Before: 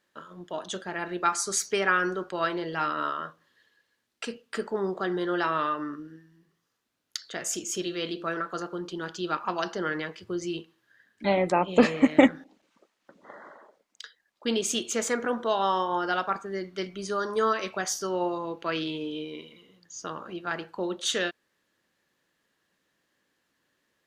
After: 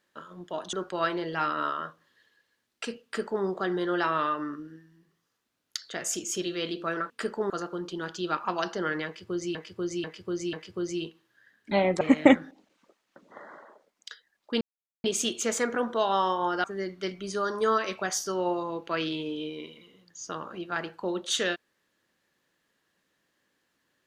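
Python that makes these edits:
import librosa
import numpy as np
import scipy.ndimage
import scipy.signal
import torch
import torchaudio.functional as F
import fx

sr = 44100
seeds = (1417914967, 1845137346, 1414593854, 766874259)

y = fx.edit(x, sr, fx.cut(start_s=0.73, length_s=1.4),
    fx.duplicate(start_s=4.44, length_s=0.4, to_s=8.5),
    fx.repeat(start_s=10.06, length_s=0.49, count=4),
    fx.cut(start_s=11.54, length_s=0.4),
    fx.insert_silence(at_s=14.54, length_s=0.43),
    fx.cut(start_s=16.14, length_s=0.25), tone=tone)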